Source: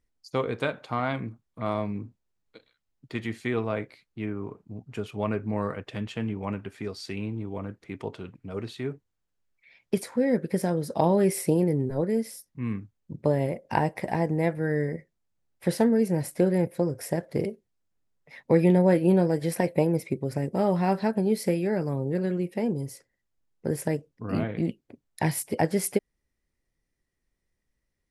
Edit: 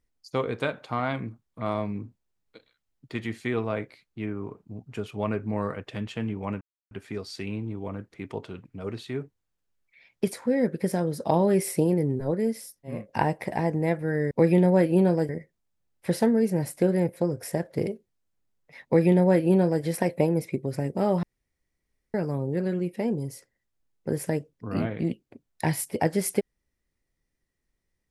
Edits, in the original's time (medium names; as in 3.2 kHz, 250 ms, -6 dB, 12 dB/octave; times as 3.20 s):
6.61 s: insert silence 0.30 s
12.65–13.51 s: delete, crossfade 0.24 s
18.43–19.41 s: copy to 14.87 s
20.81–21.72 s: room tone